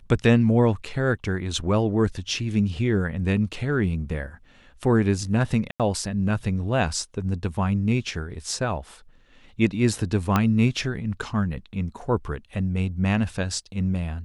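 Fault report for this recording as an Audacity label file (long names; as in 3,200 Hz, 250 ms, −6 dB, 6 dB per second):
5.710000	5.800000	drop-out 87 ms
10.360000	10.360000	click −7 dBFS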